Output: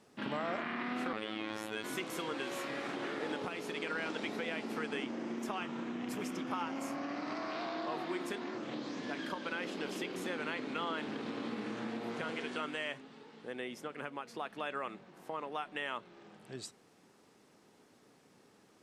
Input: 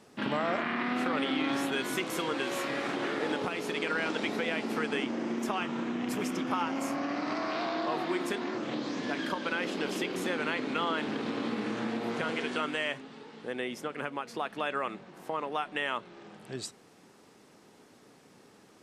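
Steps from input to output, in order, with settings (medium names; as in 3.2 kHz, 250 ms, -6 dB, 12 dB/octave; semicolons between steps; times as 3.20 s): 1.13–1.84 s: robot voice 108 Hz; trim -6.5 dB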